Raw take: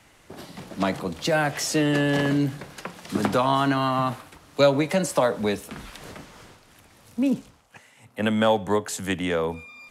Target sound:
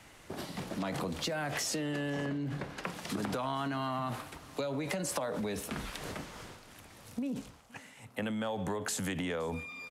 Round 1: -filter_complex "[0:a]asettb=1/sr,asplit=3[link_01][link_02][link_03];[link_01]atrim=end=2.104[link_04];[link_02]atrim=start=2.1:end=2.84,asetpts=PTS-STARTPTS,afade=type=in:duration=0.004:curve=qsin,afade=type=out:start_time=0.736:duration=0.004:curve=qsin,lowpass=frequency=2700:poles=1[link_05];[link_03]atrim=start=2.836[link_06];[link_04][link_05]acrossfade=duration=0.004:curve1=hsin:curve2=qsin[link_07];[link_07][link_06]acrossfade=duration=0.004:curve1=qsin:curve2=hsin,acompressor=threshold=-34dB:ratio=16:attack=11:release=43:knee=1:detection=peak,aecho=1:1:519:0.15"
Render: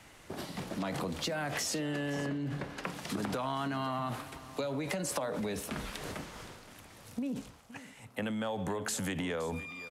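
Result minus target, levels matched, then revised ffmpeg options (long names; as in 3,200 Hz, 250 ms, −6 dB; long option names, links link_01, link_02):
echo-to-direct +7.5 dB
-filter_complex "[0:a]asettb=1/sr,asplit=3[link_01][link_02][link_03];[link_01]atrim=end=2.104[link_04];[link_02]atrim=start=2.1:end=2.84,asetpts=PTS-STARTPTS,afade=type=in:duration=0.004:curve=qsin,afade=type=out:start_time=0.736:duration=0.004:curve=qsin,lowpass=frequency=2700:poles=1[link_05];[link_03]atrim=start=2.836[link_06];[link_04][link_05]acrossfade=duration=0.004:curve1=hsin:curve2=qsin[link_07];[link_07][link_06]acrossfade=duration=0.004:curve1=qsin:curve2=hsin,acompressor=threshold=-34dB:ratio=16:attack=11:release=43:knee=1:detection=peak,aecho=1:1:519:0.0631"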